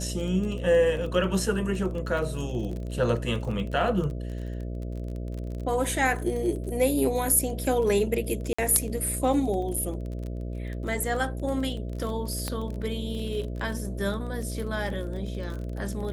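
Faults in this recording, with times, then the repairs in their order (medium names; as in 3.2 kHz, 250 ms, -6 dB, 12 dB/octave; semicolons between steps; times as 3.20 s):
buzz 60 Hz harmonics 11 -33 dBFS
crackle 28 per s -33 dBFS
8.53–8.59 s: dropout 55 ms
12.48 s: pop -15 dBFS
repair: de-click; de-hum 60 Hz, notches 11; interpolate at 8.53 s, 55 ms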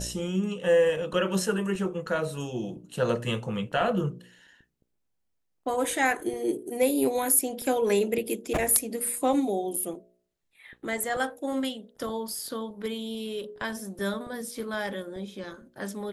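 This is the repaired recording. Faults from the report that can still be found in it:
nothing left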